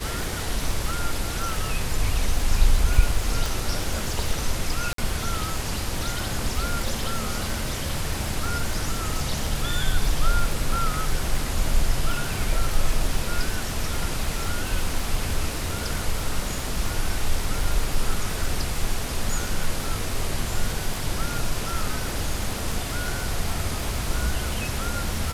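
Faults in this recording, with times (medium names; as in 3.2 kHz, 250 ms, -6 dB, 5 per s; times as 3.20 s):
crackle 110 per s -28 dBFS
3.46 s: pop
4.93–4.98 s: dropout 53 ms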